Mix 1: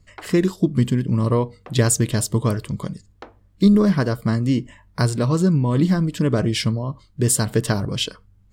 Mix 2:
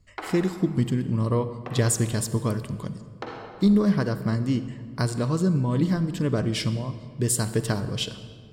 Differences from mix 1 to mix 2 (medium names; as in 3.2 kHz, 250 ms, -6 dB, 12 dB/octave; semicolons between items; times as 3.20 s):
speech -6.0 dB; reverb: on, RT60 2.0 s